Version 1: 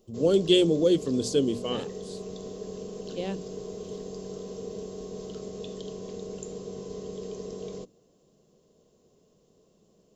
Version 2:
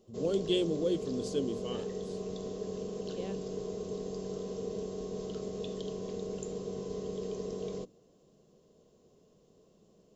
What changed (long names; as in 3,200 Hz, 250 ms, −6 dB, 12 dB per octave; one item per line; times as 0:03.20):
speech −9.0 dB
master: add high-shelf EQ 5,700 Hz −5.5 dB